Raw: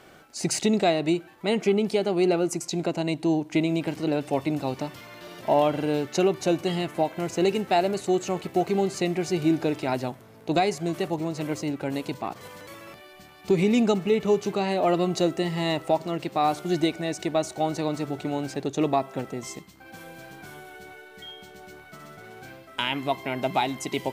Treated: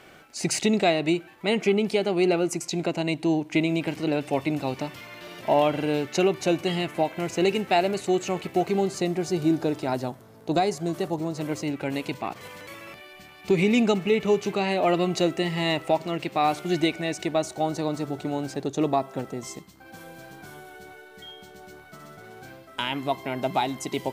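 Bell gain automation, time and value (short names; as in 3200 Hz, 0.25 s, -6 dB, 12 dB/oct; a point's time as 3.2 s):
bell 2400 Hz 0.83 oct
8.53 s +5 dB
9.13 s -5.5 dB
11.33 s -5.5 dB
11.76 s +6 dB
17.07 s +6 dB
17.66 s -3.5 dB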